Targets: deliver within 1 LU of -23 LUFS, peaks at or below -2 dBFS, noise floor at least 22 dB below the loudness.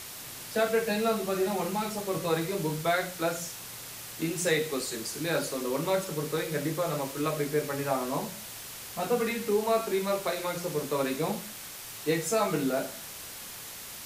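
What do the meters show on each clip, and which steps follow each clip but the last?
noise floor -43 dBFS; noise floor target -53 dBFS; loudness -30.5 LUFS; peak -13.0 dBFS; loudness target -23.0 LUFS
-> noise print and reduce 10 dB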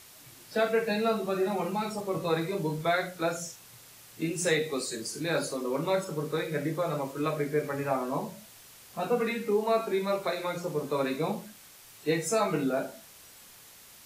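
noise floor -53 dBFS; loudness -30.5 LUFS; peak -13.5 dBFS; loudness target -23.0 LUFS
-> gain +7.5 dB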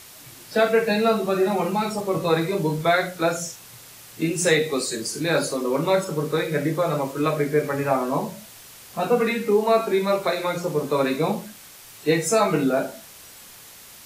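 loudness -23.0 LUFS; peak -6.0 dBFS; noise floor -45 dBFS

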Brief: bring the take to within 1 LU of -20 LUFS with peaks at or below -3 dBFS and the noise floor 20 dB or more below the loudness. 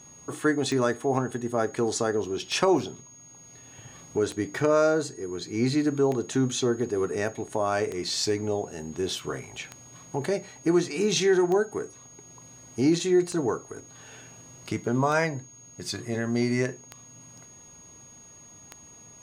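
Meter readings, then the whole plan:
clicks 11; steady tone 6600 Hz; tone level -48 dBFS; loudness -26.5 LUFS; peak -8.0 dBFS; loudness target -20.0 LUFS
-> de-click; notch 6600 Hz, Q 30; gain +6.5 dB; limiter -3 dBFS

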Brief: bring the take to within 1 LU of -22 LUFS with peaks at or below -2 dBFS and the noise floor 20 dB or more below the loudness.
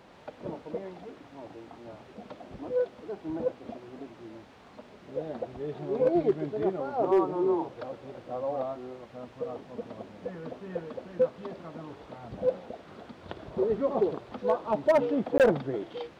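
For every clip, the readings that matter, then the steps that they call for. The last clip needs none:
clipped 0.2%; flat tops at -16.0 dBFS; dropouts 1; longest dropout 18 ms; loudness -30.0 LUFS; peak -16.0 dBFS; loudness target -22.0 LUFS
-> clip repair -16 dBFS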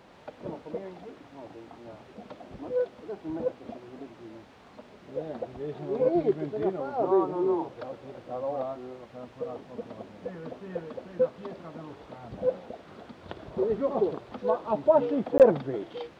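clipped 0.0%; dropouts 1; longest dropout 18 ms
-> interpolate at 15.38, 18 ms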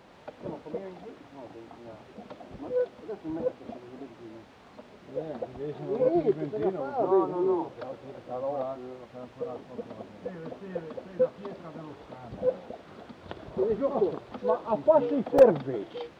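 dropouts 0; loudness -29.0 LUFS; peak -7.0 dBFS; loudness target -22.0 LUFS
-> gain +7 dB; limiter -2 dBFS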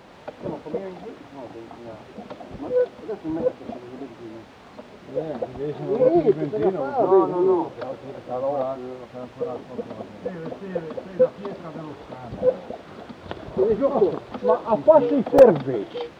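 loudness -22.5 LUFS; peak -2.0 dBFS; noise floor -46 dBFS

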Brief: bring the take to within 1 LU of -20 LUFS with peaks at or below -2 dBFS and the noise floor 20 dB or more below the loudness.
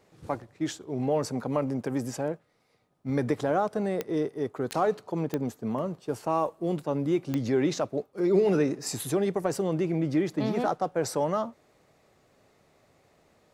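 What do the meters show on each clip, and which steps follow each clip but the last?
clicks 4; loudness -29.0 LUFS; peak -12.5 dBFS; loudness target -20.0 LUFS
-> de-click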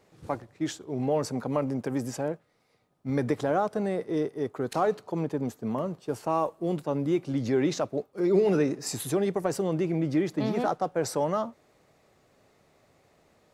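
clicks 0; loudness -29.0 LUFS; peak -12.5 dBFS; loudness target -20.0 LUFS
-> gain +9 dB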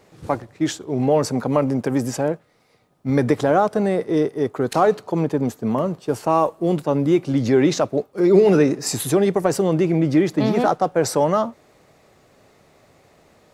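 loudness -20.0 LUFS; peak -3.5 dBFS; noise floor -57 dBFS

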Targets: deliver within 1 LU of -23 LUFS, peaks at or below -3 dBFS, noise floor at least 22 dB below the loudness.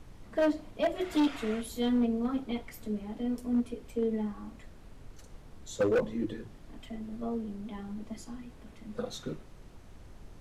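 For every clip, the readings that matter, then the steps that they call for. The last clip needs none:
clipped 1.3%; flat tops at -22.0 dBFS; noise floor -52 dBFS; noise floor target -55 dBFS; loudness -33.0 LUFS; peak -22.0 dBFS; loudness target -23.0 LUFS
-> clip repair -22 dBFS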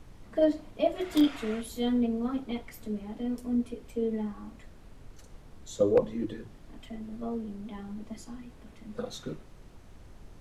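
clipped 0.0%; noise floor -52 dBFS; noise floor target -53 dBFS
-> noise print and reduce 6 dB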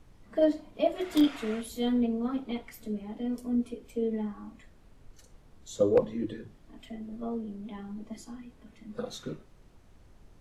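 noise floor -57 dBFS; loudness -31.5 LUFS; peak -13.0 dBFS; loudness target -23.0 LUFS
-> gain +8.5 dB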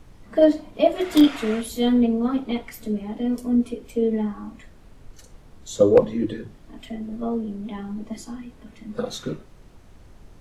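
loudness -23.0 LUFS; peak -4.5 dBFS; noise floor -49 dBFS

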